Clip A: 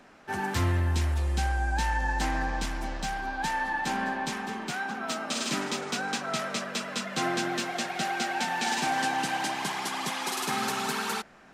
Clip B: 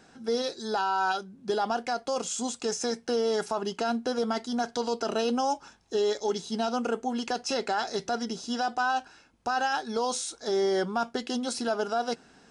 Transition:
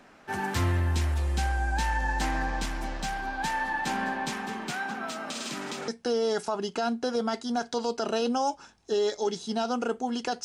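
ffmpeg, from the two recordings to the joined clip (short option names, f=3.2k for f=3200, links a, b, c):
-filter_complex "[0:a]asettb=1/sr,asplit=3[a][b][c];[a]atrim=end=5.074[d];[b]atrim=start=5.07:end=5.88,asetpts=PTS-STARTPTS,afade=t=in:d=0.004:c=qsin,afade=t=out:st=0.806:d=0.004:c=qsin,acompressor=threshold=-31dB:ratio=6:attack=3.2:release=140:knee=1:detection=peak[e];[c]atrim=start=5.876[f];[d][e]acrossfade=d=0.004:c1=hsin:c2=qsin[g];[g][f]acrossfade=d=0.004:c1=qsin:c2=hsin,apad=whole_dur=10.44,atrim=end=10.44,atrim=end=5.882[h];[1:a]atrim=start=2.908:end=7.47[i];[h][i]acrossfade=d=0.004:c1=hsin:c2=hsin"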